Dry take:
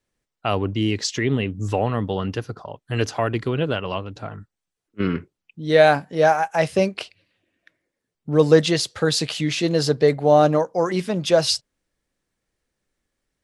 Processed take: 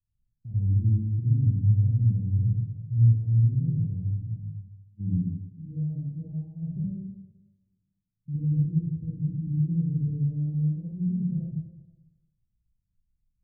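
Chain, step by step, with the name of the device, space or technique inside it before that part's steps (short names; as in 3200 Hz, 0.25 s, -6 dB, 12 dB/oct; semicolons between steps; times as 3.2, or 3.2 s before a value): club heard from the street (limiter -11.5 dBFS, peak gain reduction 9.5 dB; LPF 140 Hz 24 dB/oct; reverb RT60 1.2 s, pre-delay 42 ms, DRR -7.5 dB); gain -1 dB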